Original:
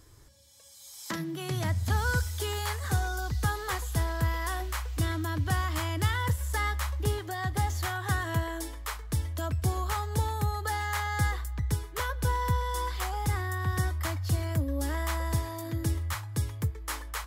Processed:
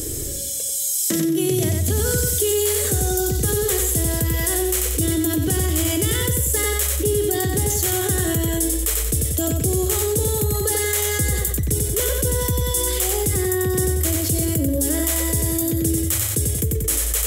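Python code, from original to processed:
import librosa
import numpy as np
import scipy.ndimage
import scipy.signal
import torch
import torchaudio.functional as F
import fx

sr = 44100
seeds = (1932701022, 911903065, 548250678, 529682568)

y = fx.curve_eq(x, sr, hz=(100.0, 200.0, 420.0, 660.0, 940.0, 3100.0, 4600.0, 7800.0), db=(0, 4, 11, 0, -15, 3, 0, 14))
y = fx.echo_feedback(y, sr, ms=92, feedback_pct=36, wet_db=-4.5)
y = fx.env_flatten(y, sr, amount_pct=70)
y = y * librosa.db_to_amplitude(1.0)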